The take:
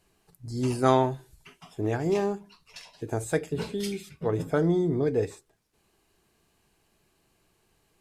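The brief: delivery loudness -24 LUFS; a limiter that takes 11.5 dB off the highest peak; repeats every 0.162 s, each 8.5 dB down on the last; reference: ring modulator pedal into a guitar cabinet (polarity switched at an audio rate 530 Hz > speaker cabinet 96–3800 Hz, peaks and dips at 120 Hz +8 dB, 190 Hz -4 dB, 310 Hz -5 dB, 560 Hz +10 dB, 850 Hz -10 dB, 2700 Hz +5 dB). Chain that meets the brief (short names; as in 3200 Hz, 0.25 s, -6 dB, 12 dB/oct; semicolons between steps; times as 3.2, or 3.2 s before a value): limiter -19 dBFS; feedback echo 0.162 s, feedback 38%, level -8.5 dB; polarity switched at an audio rate 530 Hz; speaker cabinet 96–3800 Hz, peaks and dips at 120 Hz +8 dB, 190 Hz -4 dB, 310 Hz -5 dB, 560 Hz +10 dB, 850 Hz -10 dB, 2700 Hz +5 dB; gain +6.5 dB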